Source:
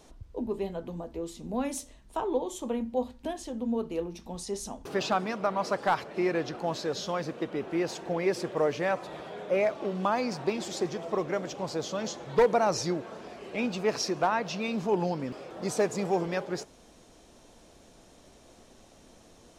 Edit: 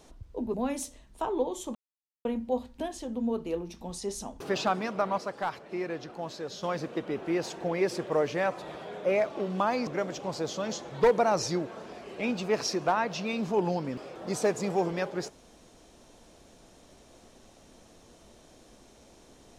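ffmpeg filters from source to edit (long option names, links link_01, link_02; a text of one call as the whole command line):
ffmpeg -i in.wav -filter_complex "[0:a]asplit=6[link_01][link_02][link_03][link_04][link_05][link_06];[link_01]atrim=end=0.542[link_07];[link_02]atrim=start=1.488:end=2.7,asetpts=PTS-STARTPTS,afade=type=out:start_time=1.208:duration=0.004:curve=hsin,apad=pad_dur=0.5[link_08];[link_03]atrim=start=2.7:end=5.632,asetpts=PTS-STARTPTS,afade=type=in:duration=0.004:curve=hsin[link_09];[link_04]atrim=start=5.628:end=7.082,asetpts=PTS-STARTPTS,volume=-6dB[link_10];[link_05]atrim=start=7.078:end=10.322[link_11];[link_06]atrim=start=11.218[link_12];[link_08][link_09]concat=n=2:v=0:a=1[link_13];[link_07][link_13]acrossfade=duration=0.004:curve1=hsin:curve2=hsin[link_14];[link_14][link_10]acrossfade=duration=0.004:curve1=hsin:curve2=hsin[link_15];[link_15][link_11]acrossfade=duration=0.004:curve1=hsin:curve2=hsin[link_16];[link_16][link_12]acrossfade=duration=0.004:curve1=hsin:curve2=hsin" out.wav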